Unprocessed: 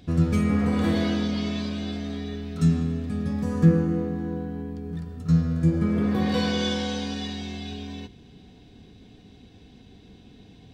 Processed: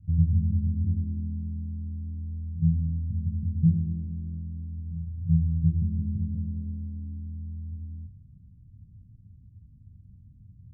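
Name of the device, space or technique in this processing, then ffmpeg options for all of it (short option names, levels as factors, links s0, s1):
the neighbour's flat through the wall: -af "lowpass=f=150:w=0.5412,lowpass=f=150:w=1.3066,equalizer=f=97:t=o:w=0.55:g=7"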